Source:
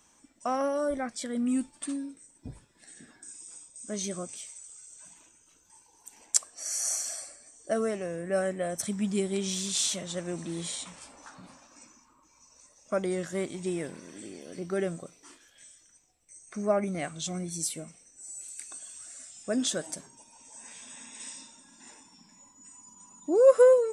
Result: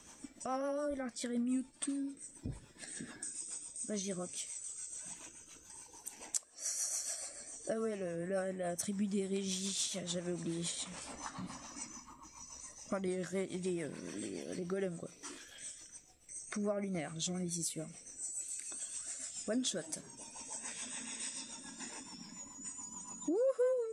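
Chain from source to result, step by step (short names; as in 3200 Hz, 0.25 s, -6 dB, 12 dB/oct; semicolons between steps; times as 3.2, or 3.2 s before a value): 11.14–13.08 comb 1 ms, depth 46%; compressor 2.5:1, threshold -49 dBFS, peak gain reduction 22.5 dB; rotary speaker horn 7 Hz; gain +9 dB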